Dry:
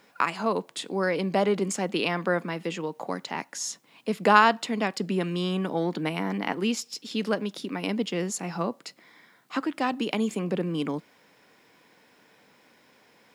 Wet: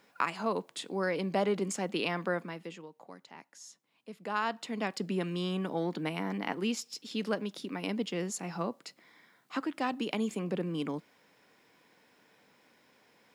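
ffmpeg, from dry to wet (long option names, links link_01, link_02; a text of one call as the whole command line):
ffmpeg -i in.wav -af "volume=7dB,afade=type=out:start_time=2.21:duration=0.69:silence=0.237137,afade=type=in:start_time=4.29:duration=0.65:silence=0.237137" out.wav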